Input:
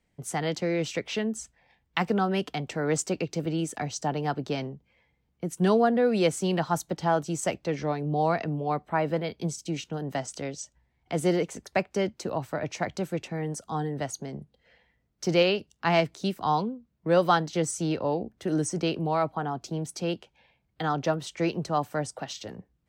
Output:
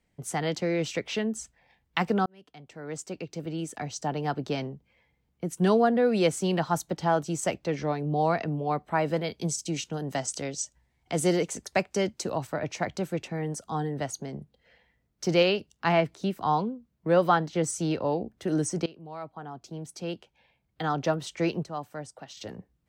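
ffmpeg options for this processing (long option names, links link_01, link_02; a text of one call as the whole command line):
ffmpeg -i in.wav -filter_complex "[0:a]asettb=1/sr,asplit=3[link_01][link_02][link_03];[link_01]atrim=end=8.884[link_04];[link_02]atrim=start=8.88:end=12.47,asetpts=PTS-STARTPTS,afade=type=in:duration=0.004:curve=qsin,afade=type=out:start_time=3.586:duration=0.004:curve=qsin,equalizer=frequency=7900:width_type=o:width=1.7:gain=7.5[link_05];[link_03]atrim=start=12.466[link_06];[link_04][link_05]acrossfade=duration=0.004:curve1=hsin:curve2=qsin[link_07];[link_07][link_06]acrossfade=duration=0.004:curve1=qsin:curve2=hsin,asettb=1/sr,asplit=3[link_08][link_09][link_10];[link_08]atrim=end=15.924[link_11];[link_09]atrim=start=15.92:end=17.64,asetpts=PTS-STARTPTS,afade=type=in:duration=0.004:curve=qsin,afade=type=out:start_time=1.716:duration=0.004:curve=qsin,acrossover=split=3000[link_12][link_13];[link_13]acompressor=threshold=-48dB:ratio=4:attack=1:release=60[link_14];[link_12][link_14]amix=inputs=2:normalize=0[link_15];[link_10]atrim=start=17.636[link_16];[link_11][link_15]acrossfade=duration=0.004:curve1=hsin:curve2=qsin[link_17];[link_17][link_16]acrossfade=duration=0.004:curve1=qsin:curve2=hsin,asplit=5[link_18][link_19][link_20][link_21][link_22];[link_18]atrim=end=2.26,asetpts=PTS-STARTPTS,afade=type=out:start_time=2.256:duration=0.004:curve=hsin[link_23];[link_19]atrim=start=2.26:end=18.86,asetpts=PTS-STARTPTS,afade=type=in:duration=2.19,afade=type=out:start_time=16.596:duration=0.004:curve=hsin:silence=0.0841395[link_24];[link_20]atrim=start=18.86:end=21.632,asetpts=PTS-STARTPTS,afade=type=in:duration=2.21:silence=0.0841395[link_25];[link_21]atrim=start=21.628:end=22.372,asetpts=PTS-STARTPTS,volume=-8.5dB[link_26];[link_22]atrim=start=22.368[link_27];[link_23][link_24][link_25]concat=n=3:v=0:a=1[link_28];[link_28][link_26]acrossfade=duration=0.004:curve1=hsin:curve2=hsin[link_29];[link_29][link_27]acrossfade=duration=0.004:curve1=hsin:curve2=hsin" out.wav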